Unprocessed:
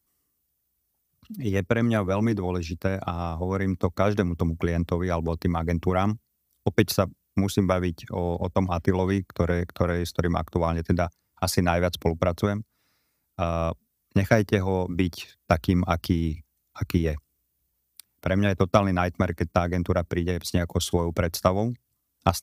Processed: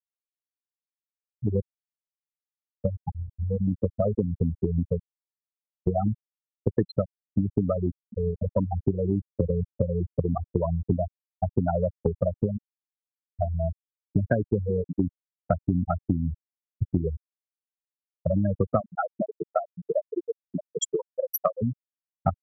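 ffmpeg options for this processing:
ffmpeg -i in.wav -filter_complex "[0:a]asettb=1/sr,asplit=3[link_01][link_02][link_03];[link_01]atrim=end=1.604[link_04];[link_02]atrim=start=1.6:end=2.85,asetpts=PTS-STARTPTS,afade=type=in:duration=0.004:curve=qsin,afade=type=out:start_time=1.246:duration=0.004:curve=qsin,acompressor=threshold=-31dB:ratio=6:attack=3.2:release=140:knee=1:detection=peak[link_05];[link_03]atrim=start=2.846[link_06];[link_04][link_05]acrossfade=duration=0.004:curve1=hsin:curve2=qsin[link_07];[link_07][link_06]acrossfade=duration=0.004:curve1=qsin:curve2=hsin,asettb=1/sr,asplit=3[link_08][link_09][link_10];[link_08]atrim=end=18.804[link_11];[link_09]atrim=start=18.8:end=21.62,asetpts=PTS-STARTPTS,afade=type=in:duration=0.004:curve=qsin,afade=type=out:start_time=2.816:duration=0.004:curve=qsin,aemphasis=mode=production:type=bsi[link_12];[link_10]atrim=start=21.616[link_13];[link_11][link_12]acrossfade=duration=0.004:curve1=hsin:curve2=qsin[link_14];[link_14][link_13]acrossfade=duration=0.004:curve1=qsin:curve2=hsin,asplit=3[link_15][link_16][link_17];[link_15]atrim=end=5,asetpts=PTS-STARTPTS,afade=type=out:start_time=4.996:duration=0.004:curve=hsin[link_18];[link_16]atrim=start=5:end=5.87,asetpts=PTS-STARTPTS,volume=0[link_19];[link_17]atrim=start=5.87,asetpts=PTS-STARTPTS,afade=type=in:duration=0.004:curve=hsin[link_20];[link_18][link_19][link_20]concat=n=3:v=0:a=1,afftfilt=real='re*gte(hypot(re,im),0.316)':imag='im*gte(hypot(re,im),0.316)':win_size=1024:overlap=0.75,acompressor=threshold=-29dB:ratio=3,volume=6.5dB" out.wav

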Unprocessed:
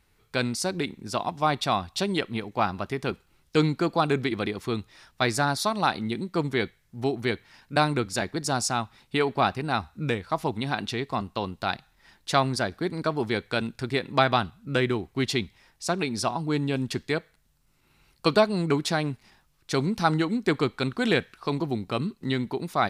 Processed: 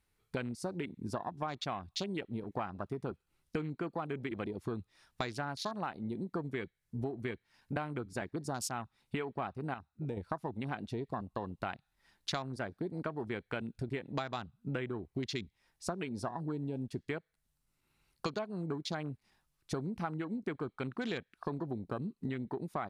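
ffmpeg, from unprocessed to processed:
ffmpeg -i in.wav -filter_complex "[0:a]asplit=3[link_01][link_02][link_03];[link_01]atrim=end=9.742[link_04];[link_02]atrim=start=9.738:end=10.172,asetpts=PTS-STARTPTS,volume=-9dB[link_05];[link_03]atrim=start=10.168[link_06];[link_04][link_05]acrossfade=duration=0.004:curve1=hsin:curve2=hsin[link_07];[link_07][link_06]acrossfade=duration=0.004:curve1=hsin:curve2=hsin,afwtdn=0.0224,equalizer=frequency=10000:width=1.3:gain=4.5,acompressor=threshold=-38dB:ratio=10,volume=3.5dB" out.wav

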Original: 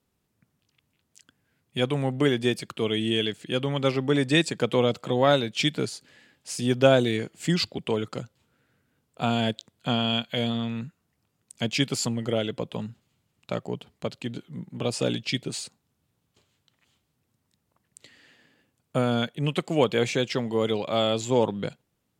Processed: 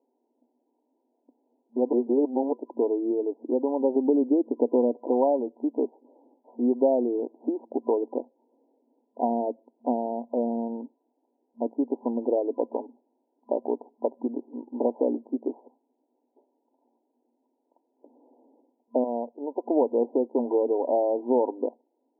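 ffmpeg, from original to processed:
ffmpeg -i in.wav -filter_complex "[0:a]asettb=1/sr,asplit=3[link_01][link_02][link_03];[link_01]atrim=end=3.964[link_04];[link_02]atrim=start=3.96:end=5.01,asetpts=PTS-STARTPTS,afade=type=in:duration=0.004:curve=qsin,afade=type=out:start_time=1.046:duration=0.004:curve=qsin,tiltshelf=frequency=770:gain=7[link_05];[link_03]atrim=start=5.006[link_06];[link_04][link_05]acrossfade=duration=0.004:curve1=hsin:curve2=qsin[link_07];[link_07][link_06]acrossfade=duration=0.004:curve1=qsin:curve2=hsin,asettb=1/sr,asplit=3[link_08][link_09][link_10];[link_08]atrim=end=13.754[link_11];[link_09]atrim=start=13.75:end=14.91,asetpts=PTS-STARTPTS,afade=type=in:duration=0.004:curve=qsin,afade=type=out:start_time=1.156:duration=0.004:curve=qsin,lowpass=frequency=1800:width_type=q:width=4.9[link_12];[link_10]atrim=start=14.906[link_13];[link_11][link_12]acrossfade=duration=0.004:curve1=hsin:curve2=qsin[link_14];[link_14][link_13]acrossfade=duration=0.004:curve1=qsin:curve2=hsin,asettb=1/sr,asplit=3[link_15][link_16][link_17];[link_15]atrim=end=19.044[link_18];[link_16]atrim=start=19.04:end=19.66,asetpts=PTS-STARTPTS,afade=type=in:duration=0.004:curve=qsin,afade=type=out:start_time=0.616:duration=0.004:curve=qsin,highpass=frequency=920:poles=1[link_19];[link_17]atrim=start=19.656[link_20];[link_18][link_19]acrossfade=duration=0.004:curve1=hsin:curve2=qsin[link_21];[link_21][link_20]acrossfade=duration=0.004:curve1=qsin:curve2=hsin,asplit=3[link_22][link_23][link_24];[link_22]atrim=end=1.932[link_25];[link_23]atrim=start=1.928:end=2.532,asetpts=PTS-STARTPTS,areverse[link_26];[link_24]atrim=start=2.528[link_27];[link_25][link_26]acrossfade=duration=0.004:curve1=hsin:curve2=hsin[link_28];[link_28][link_27]acrossfade=duration=0.004:curve1=hsin:curve2=hsin,acompressor=threshold=-26dB:ratio=4,afftfilt=real='re*between(b*sr/4096,230,1000)':imag='im*between(b*sr/4096,230,1000)':win_size=4096:overlap=0.75,volume=7.5dB" out.wav

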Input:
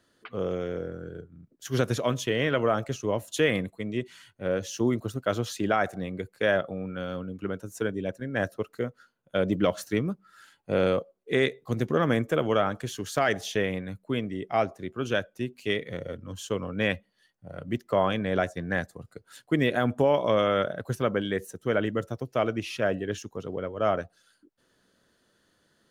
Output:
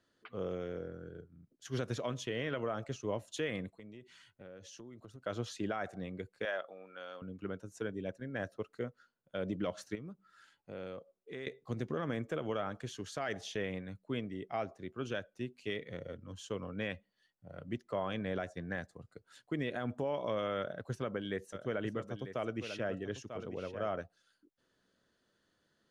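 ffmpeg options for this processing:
ffmpeg -i in.wav -filter_complex "[0:a]asplit=3[link_01][link_02][link_03];[link_01]afade=type=out:start_time=3.76:duration=0.02[link_04];[link_02]acompressor=threshold=-39dB:ratio=8:attack=3.2:release=140:knee=1:detection=peak,afade=type=in:start_time=3.76:duration=0.02,afade=type=out:start_time=5.21:duration=0.02[link_05];[link_03]afade=type=in:start_time=5.21:duration=0.02[link_06];[link_04][link_05][link_06]amix=inputs=3:normalize=0,asettb=1/sr,asplit=3[link_07][link_08][link_09];[link_07]atrim=end=6.454[link_10];[link_08]atrim=start=6.45:end=7.22,asetpts=PTS-STARTPTS,afade=type=in:duration=0.004:curve=qsin,afade=type=out:start_time=0.766:duration=0.004:curve=qsin,highpass=600[link_11];[link_09]atrim=start=7.216[link_12];[link_10][link_11]acrossfade=duration=0.004:curve1=hsin:curve2=qsin[link_13];[link_13][link_12]acrossfade=duration=0.004:curve1=qsin:curve2=hsin,asettb=1/sr,asplit=3[link_14][link_15][link_16];[link_14]atrim=end=9.954[link_17];[link_15]atrim=start=9.95:end=11.47,asetpts=PTS-STARTPTS,afade=type=in:duration=0.004:curve=qsin,afade=type=out:start_time=1.516:duration=0.004:curve=qsin,acompressor=threshold=-41dB:ratio=2:attack=3.2:release=140:knee=1:detection=peak[link_18];[link_16]atrim=start=11.466[link_19];[link_17][link_18]acrossfade=duration=0.004:curve1=hsin:curve2=qsin[link_20];[link_20][link_19]acrossfade=duration=0.004:curve1=qsin:curve2=hsin,asettb=1/sr,asplit=3[link_21][link_22][link_23];[link_21]atrim=end=20.584[link_24];[link_22]atrim=start=20.58:end=23.88,asetpts=PTS-STARTPTS,afade=type=in:duration=0.004:curve=qsin,afade=type=out:start_time=3.296:duration=0.004:curve=qsin,aecho=1:1:944:0.266,atrim=end_sample=145530[link_25];[link_23]atrim=start=23.876[link_26];[link_24][link_25]acrossfade=duration=0.004:curve1=hsin:curve2=qsin[link_27];[link_27][link_26]acrossfade=duration=0.004:curve1=qsin:curve2=hsin,lowpass=7400,alimiter=limit=-17dB:level=0:latency=1:release=103,volume=-8.5dB" out.wav

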